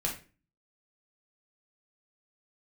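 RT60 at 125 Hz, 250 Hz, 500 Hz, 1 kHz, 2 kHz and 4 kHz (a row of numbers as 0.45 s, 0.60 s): 0.55 s, 0.50 s, 0.40 s, 0.30 s, 0.35 s, 0.30 s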